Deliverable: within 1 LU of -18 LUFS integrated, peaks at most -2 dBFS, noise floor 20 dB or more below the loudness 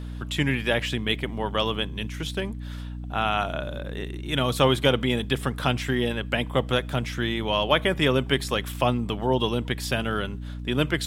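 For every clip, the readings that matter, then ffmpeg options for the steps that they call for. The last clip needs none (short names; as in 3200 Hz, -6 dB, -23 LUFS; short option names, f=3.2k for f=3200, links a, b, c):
hum 60 Hz; harmonics up to 300 Hz; hum level -32 dBFS; loudness -25.5 LUFS; peak -6.0 dBFS; loudness target -18.0 LUFS
-> -af "bandreject=f=60:t=h:w=4,bandreject=f=120:t=h:w=4,bandreject=f=180:t=h:w=4,bandreject=f=240:t=h:w=4,bandreject=f=300:t=h:w=4"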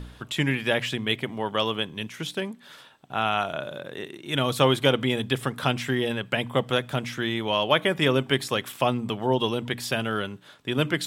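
hum none; loudness -26.0 LUFS; peak -5.5 dBFS; loudness target -18.0 LUFS
-> -af "volume=8dB,alimiter=limit=-2dB:level=0:latency=1"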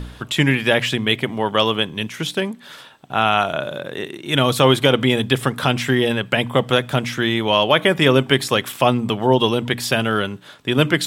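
loudness -18.5 LUFS; peak -2.0 dBFS; noise floor -43 dBFS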